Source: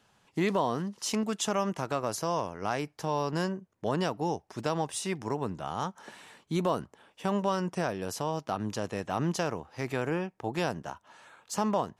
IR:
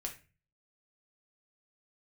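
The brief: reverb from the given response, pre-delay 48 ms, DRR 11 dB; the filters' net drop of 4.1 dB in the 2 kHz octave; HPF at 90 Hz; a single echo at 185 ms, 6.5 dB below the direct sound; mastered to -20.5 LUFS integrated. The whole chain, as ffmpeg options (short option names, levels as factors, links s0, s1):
-filter_complex "[0:a]highpass=90,equalizer=f=2000:t=o:g=-5.5,aecho=1:1:185:0.473,asplit=2[s0][s1];[1:a]atrim=start_sample=2205,adelay=48[s2];[s1][s2]afir=irnorm=-1:irlink=0,volume=0.316[s3];[s0][s3]amix=inputs=2:normalize=0,volume=3.55"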